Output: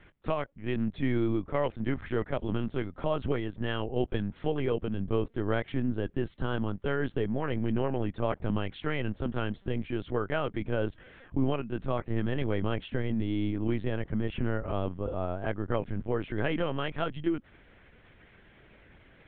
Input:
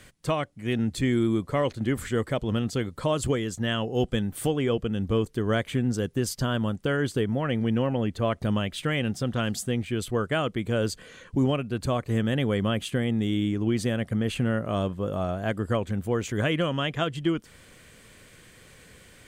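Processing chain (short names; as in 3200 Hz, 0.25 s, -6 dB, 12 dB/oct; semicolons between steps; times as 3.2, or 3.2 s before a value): LPF 2600 Hz 12 dB/oct; LPC vocoder at 8 kHz pitch kept; gain -3.5 dB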